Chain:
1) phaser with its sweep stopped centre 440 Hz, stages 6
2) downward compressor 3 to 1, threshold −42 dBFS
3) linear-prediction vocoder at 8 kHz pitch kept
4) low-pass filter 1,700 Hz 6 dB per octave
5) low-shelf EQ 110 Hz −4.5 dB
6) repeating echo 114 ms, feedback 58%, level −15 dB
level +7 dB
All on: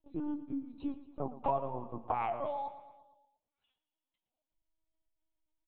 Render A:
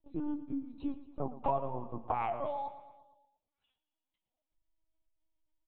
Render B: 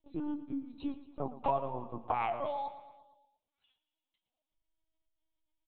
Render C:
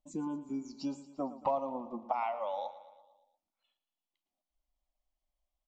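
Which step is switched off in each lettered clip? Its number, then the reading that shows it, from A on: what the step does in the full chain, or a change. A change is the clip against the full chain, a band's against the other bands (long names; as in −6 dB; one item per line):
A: 5, 125 Hz band +2.0 dB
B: 4, 2 kHz band +3.5 dB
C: 3, 125 Hz band −6.5 dB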